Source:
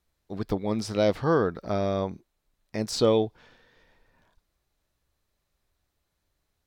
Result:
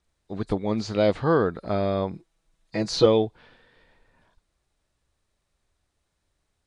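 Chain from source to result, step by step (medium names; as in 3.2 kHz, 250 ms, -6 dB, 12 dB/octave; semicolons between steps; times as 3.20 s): knee-point frequency compression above 3.6 kHz 1.5:1; 2.13–3.06 s: comb 6.1 ms, depth 85%; trim +2 dB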